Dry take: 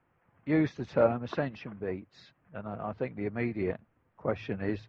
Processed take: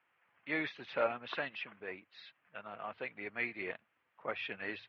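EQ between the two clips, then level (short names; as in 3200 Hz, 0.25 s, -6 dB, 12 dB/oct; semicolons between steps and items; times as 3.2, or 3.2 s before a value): band-pass 3100 Hz, Q 1.7; air absorption 220 m; +11.0 dB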